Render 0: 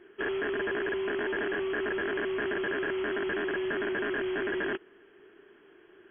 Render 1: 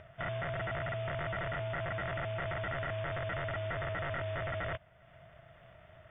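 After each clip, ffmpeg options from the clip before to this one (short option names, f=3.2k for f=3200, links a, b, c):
-af "acompressor=mode=upward:threshold=-43dB:ratio=2.5,aeval=exprs='val(0)*sin(2*PI*270*n/s)':c=same,volume=-2.5dB"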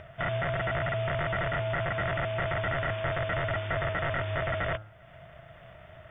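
-af "bandreject=f=107.4:t=h:w=4,bandreject=f=214.8:t=h:w=4,bandreject=f=322.2:t=h:w=4,bandreject=f=429.6:t=h:w=4,bandreject=f=537:t=h:w=4,bandreject=f=644.4:t=h:w=4,bandreject=f=751.8:t=h:w=4,bandreject=f=859.2:t=h:w=4,bandreject=f=966.6:t=h:w=4,bandreject=f=1.074k:t=h:w=4,bandreject=f=1.1814k:t=h:w=4,bandreject=f=1.2888k:t=h:w=4,bandreject=f=1.3962k:t=h:w=4,bandreject=f=1.5036k:t=h:w=4,bandreject=f=1.611k:t=h:w=4,volume=7dB"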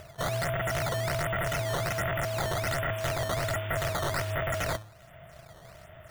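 -af "acrusher=samples=10:mix=1:aa=0.000001:lfo=1:lforange=16:lforate=1.3"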